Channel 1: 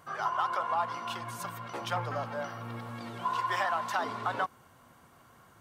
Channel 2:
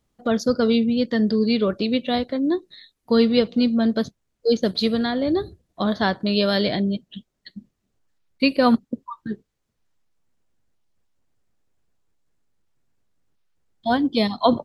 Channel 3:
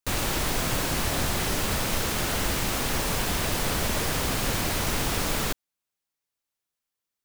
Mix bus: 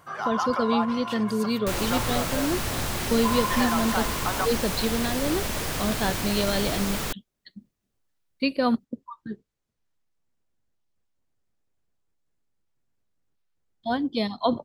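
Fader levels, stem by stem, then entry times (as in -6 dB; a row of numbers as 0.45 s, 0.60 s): +2.5 dB, -6.0 dB, -2.5 dB; 0.00 s, 0.00 s, 1.60 s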